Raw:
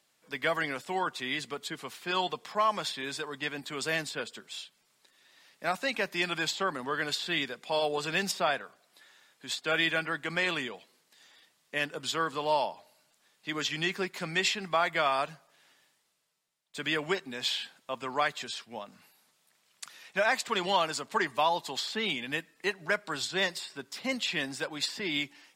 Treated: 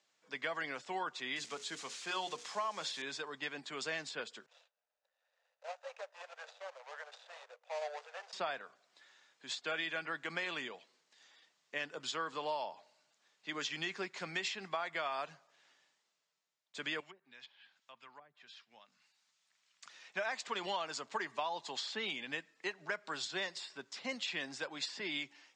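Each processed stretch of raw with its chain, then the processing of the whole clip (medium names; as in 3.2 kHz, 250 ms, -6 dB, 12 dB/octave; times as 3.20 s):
1.36–3.02 s: zero-crossing glitches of -31 dBFS + hum notches 60/120/180/240/300/360/420/480/540 Hz
4.46–8.33 s: median filter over 41 samples + steep high-pass 500 Hz 72 dB/octave
17.00–19.84 s: low-pass that closes with the level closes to 460 Hz, closed at -25.5 dBFS + amplifier tone stack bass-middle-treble 5-5-5 + three bands compressed up and down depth 40%
whole clip: bass shelf 180 Hz -11.5 dB; compression, threshold -29 dBFS; elliptic band-pass 120–6900 Hz, stop band 40 dB; trim -4.5 dB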